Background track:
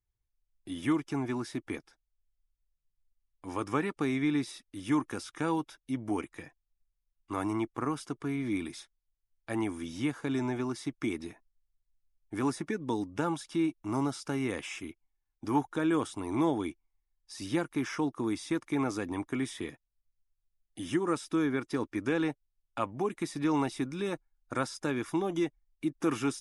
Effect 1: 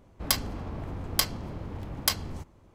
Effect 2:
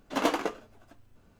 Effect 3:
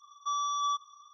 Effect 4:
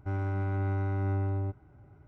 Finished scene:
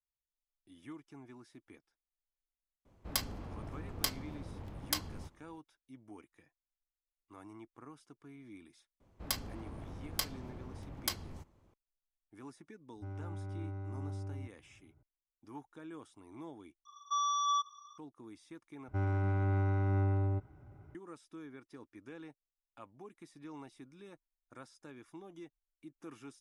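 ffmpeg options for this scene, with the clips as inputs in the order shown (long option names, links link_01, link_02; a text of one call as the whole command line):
ffmpeg -i bed.wav -i cue0.wav -i cue1.wav -i cue2.wav -i cue3.wav -filter_complex "[1:a]asplit=2[link_01][link_02];[4:a]asplit=2[link_03][link_04];[0:a]volume=-20dB[link_05];[link_03]equalizer=frequency=1900:width_type=o:width=2.6:gain=-5.5[link_06];[link_05]asplit=3[link_07][link_08][link_09];[link_07]atrim=end=16.854[link_10];[3:a]atrim=end=1.13,asetpts=PTS-STARTPTS,volume=-1dB[link_11];[link_08]atrim=start=17.976:end=18.884[link_12];[link_04]atrim=end=2.07,asetpts=PTS-STARTPTS,volume=-1dB[link_13];[link_09]atrim=start=20.946[link_14];[link_01]atrim=end=2.74,asetpts=PTS-STARTPTS,volume=-8.5dB,afade=type=in:duration=0.004:curve=hsin,afade=type=out:start_time=2.736:duration=0.004:curve=hsin,adelay=2850[link_15];[link_02]atrim=end=2.74,asetpts=PTS-STARTPTS,volume=-10dB,afade=type=in:duration=0.004:curve=hsin,afade=type=out:start_time=2.736:duration=0.004:curve=hsin,adelay=9000[link_16];[link_06]atrim=end=2.07,asetpts=PTS-STARTPTS,volume=-11.5dB,afade=type=in:duration=0.004:curve=hsin,afade=type=out:start_time=2.066:duration=0.004:curve=hsin,adelay=12960[link_17];[link_10][link_11]acrossfade=duration=0.004:curve1=hsin:curve2=hsin[link_18];[link_18][link_12]acrossfade=duration=0.004:curve1=hsin:curve2=hsin[link_19];[link_19][link_13]acrossfade=duration=0.004:curve1=hsin:curve2=hsin[link_20];[link_20][link_14]acrossfade=duration=0.004:curve1=hsin:curve2=hsin[link_21];[link_21][link_15][link_16][link_17]amix=inputs=4:normalize=0" out.wav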